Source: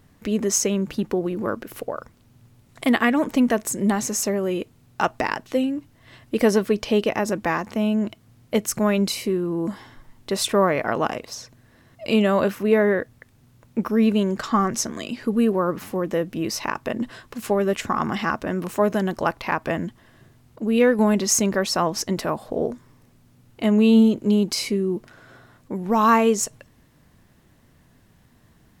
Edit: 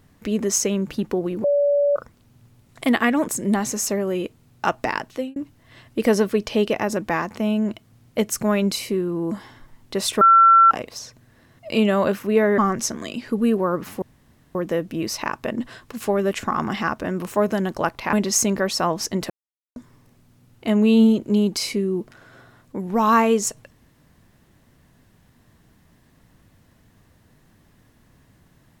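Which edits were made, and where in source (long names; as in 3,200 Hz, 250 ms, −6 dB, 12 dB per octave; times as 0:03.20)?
0:01.44–0:01.96: beep over 574 Hz −15 dBFS
0:03.28–0:03.64: remove
0:05.45–0:05.72: fade out
0:10.57–0:11.07: beep over 1,350 Hz −8.5 dBFS
0:12.94–0:14.53: remove
0:15.97: splice in room tone 0.53 s
0:19.55–0:21.09: remove
0:22.26–0:22.72: silence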